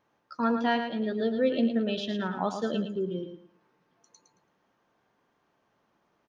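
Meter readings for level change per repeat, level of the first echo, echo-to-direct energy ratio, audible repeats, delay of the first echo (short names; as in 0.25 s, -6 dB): -12.0 dB, -7.5 dB, -7.0 dB, 3, 0.111 s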